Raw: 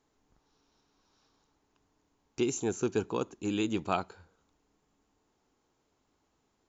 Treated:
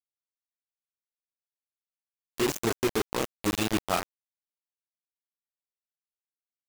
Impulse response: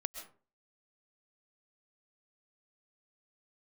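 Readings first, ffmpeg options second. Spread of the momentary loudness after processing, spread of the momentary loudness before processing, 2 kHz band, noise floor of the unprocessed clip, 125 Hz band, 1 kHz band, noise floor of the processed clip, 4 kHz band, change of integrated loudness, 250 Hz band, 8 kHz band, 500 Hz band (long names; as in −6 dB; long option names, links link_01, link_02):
4 LU, 5 LU, +7.5 dB, −76 dBFS, +2.5 dB, +4.0 dB, below −85 dBFS, +8.5 dB, +3.5 dB, +1.5 dB, can't be measured, +2.5 dB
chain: -filter_complex "[0:a]asplit=2[link_01][link_02];[1:a]atrim=start_sample=2205[link_03];[link_02][link_03]afir=irnorm=-1:irlink=0,volume=-10.5dB[link_04];[link_01][link_04]amix=inputs=2:normalize=0,flanger=delay=17.5:depth=7.2:speed=1.1,acrusher=bits=4:mix=0:aa=0.000001,volume=3dB"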